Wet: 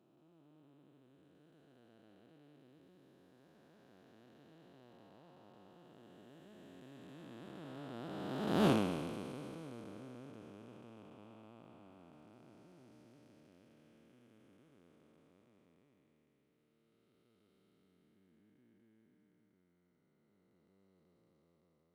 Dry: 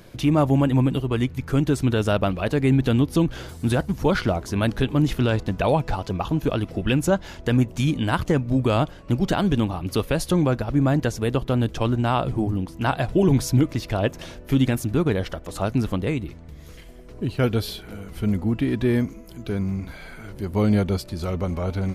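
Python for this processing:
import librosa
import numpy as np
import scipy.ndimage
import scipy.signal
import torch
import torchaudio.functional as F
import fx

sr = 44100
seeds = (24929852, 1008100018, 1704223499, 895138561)

y = fx.spec_blur(x, sr, span_ms=1050.0)
y = fx.doppler_pass(y, sr, speed_mps=30, closest_m=2.1, pass_at_s=8.67)
y = scipy.signal.sosfilt(scipy.signal.butter(2, 210.0, 'highpass', fs=sr, output='sos'), y)
y = F.gain(torch.from_numpy(y), 3.0).numpy()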